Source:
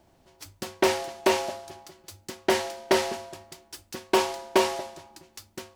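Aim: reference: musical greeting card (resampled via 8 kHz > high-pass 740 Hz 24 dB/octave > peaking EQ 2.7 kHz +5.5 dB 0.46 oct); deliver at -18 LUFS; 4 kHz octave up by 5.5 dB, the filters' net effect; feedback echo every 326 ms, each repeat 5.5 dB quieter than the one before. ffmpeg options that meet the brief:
-af "equalizer=f=4000:t=o:g=4.5,aecho=1:1:326|652|978|1304|1630|1956|2282:0.531|0.281|0.149|0.079|0.0419|0.0222|0.0118,aresample=8000,aresample=44100,highpass=f=740:w=0.5412,highpass=f=740:w=1.3066,equalizer=f=2700:t=o:w=0.46:g=5.5,volume=3.35"

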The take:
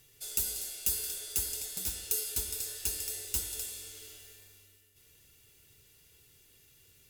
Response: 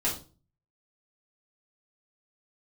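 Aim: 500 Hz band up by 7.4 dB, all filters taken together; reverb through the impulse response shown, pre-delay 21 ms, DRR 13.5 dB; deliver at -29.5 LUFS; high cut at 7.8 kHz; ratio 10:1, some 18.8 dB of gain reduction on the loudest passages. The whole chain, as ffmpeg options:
-filter_complex "[0:a]lowpass=7800,equalizer=f=500:t=o:g=9,acompressor=threshold=0.00251:ratio=10,asplit=2[s0][s1];[1:a]atrim=start_sample=2205,adelay=21[s2];[s1][s2]afir=irnorm=-1:irlink=0,volume=0.0841[s3];[s0][s3]amix=inputs=2:normalize=0,volume=17.8"

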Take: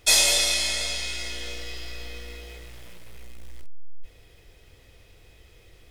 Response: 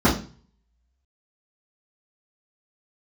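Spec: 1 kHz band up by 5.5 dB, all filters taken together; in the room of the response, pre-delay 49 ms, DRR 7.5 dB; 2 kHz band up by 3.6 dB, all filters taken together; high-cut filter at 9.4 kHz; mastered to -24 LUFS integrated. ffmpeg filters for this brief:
-filter_complex "[0:a]lowpass=9400,equalizer=f=1000:t=o:g=6.5,equalizer=f=2000:t=o:g=3.5,asplit=2[s0][s1];[1:a]atrim=start_sample=2205,adelay=49[s2];[s1][s2]afir=irnorm=-1:irlink=0,volume=0.0447[s3];[s0][s3]amix=inputs=2:normalize=0,volume=0.944"

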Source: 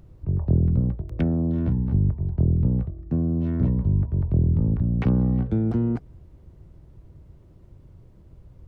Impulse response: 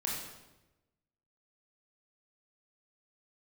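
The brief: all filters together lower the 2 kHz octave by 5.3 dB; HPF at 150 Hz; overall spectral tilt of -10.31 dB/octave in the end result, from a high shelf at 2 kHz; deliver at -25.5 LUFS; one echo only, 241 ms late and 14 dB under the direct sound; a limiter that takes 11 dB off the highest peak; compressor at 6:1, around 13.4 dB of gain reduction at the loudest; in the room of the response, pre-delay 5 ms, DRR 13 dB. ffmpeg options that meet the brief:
-filter_complex "[0:a]highpass=150,highshelf=f=2000:g=-4,equalizer=f=2000:t=o:g=-4.5,acompressor=threshold=0.0178:ratio=6,alimiter=level_in=3.98:limit=0.0631:level=0:latency=1,volume=0.251,aecho=1:1:241:0.2,asplit=2[s0][s1];[1:a]atrim=start_sample=2205,adelay=5[s2];[s1][s2]afir=irnorm=-1:irlink=0,volume=0.141[s3];[s0][s3]amix=inputs=2:normalize=0,volume=7.5"

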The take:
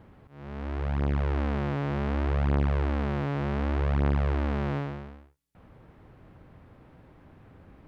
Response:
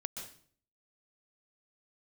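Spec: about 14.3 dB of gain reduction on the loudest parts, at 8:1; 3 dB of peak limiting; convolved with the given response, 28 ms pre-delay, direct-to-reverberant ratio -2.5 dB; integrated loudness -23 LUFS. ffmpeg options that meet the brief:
-filter_complex "[0:a]acompressor=threshold=0.0158:ratio=8,alimiter=level_in=2.51:limit=0.0631:level=0:latency=1,volume=0.398,asplit=2[s0][s1];[1:a]atrim=start_sample=2205,adelay=28[s2];[s1][s2]afir=irnorm=-1:irlink=0,volume=1.41[s3];[s0][s3]amix=inputs=2:normalize=0,volume=3.55"

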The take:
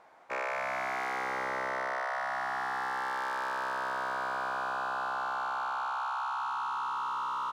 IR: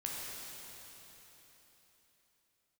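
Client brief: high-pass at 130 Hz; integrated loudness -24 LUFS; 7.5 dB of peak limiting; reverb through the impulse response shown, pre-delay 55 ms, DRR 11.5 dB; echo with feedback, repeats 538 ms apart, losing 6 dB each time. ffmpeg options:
-filter_complex "[0:a]highpass=130,alimiter=level_in=3.16:limit=0.0631:level=0:latency=1,volume=0.316,aecho=1:1:538|1076|1614|2152|2690|3228:0.501|0.251|0.125|0.0626|0.0313|0.0157,asplit=2[s0][s1];[1:a]atrim=start_sample=2205,adelay=55[s2];[s1][s2]afir=irnorm=-1:irlink=0,volume=0.211[s3];[s0][s3]amix=inputs=2:normalize=0,volume=4.22"

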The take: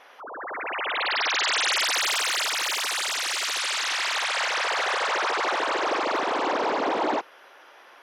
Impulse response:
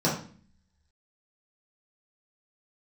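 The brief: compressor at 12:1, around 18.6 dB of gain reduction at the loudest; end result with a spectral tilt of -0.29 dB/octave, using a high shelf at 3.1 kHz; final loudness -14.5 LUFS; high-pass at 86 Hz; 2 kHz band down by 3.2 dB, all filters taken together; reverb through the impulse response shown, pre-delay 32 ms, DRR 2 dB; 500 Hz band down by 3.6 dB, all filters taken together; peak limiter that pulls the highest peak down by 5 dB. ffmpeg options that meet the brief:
-filter_complex "[0:a]highpass=86,equalizer=f=500:t=o:g=-4.5,equalizer=f=2000:t=o:g=-5.5,highshelf=f=3100:g=4.5,acompressor=threshold=0.01:ratio=12,alimiter=level_in=3.98:limit=0.0631:level=0:latency=1,volume=0.251,asplit=2[s0][s1];[1:a]atrim=start_sample=2205,adelay=32[s2];[s1][s2]afir=irnorm=-1:irlink=0,volume=0.178[s3];[s0][s3]amix=inputs=2:normalize=0,volume=22.4"

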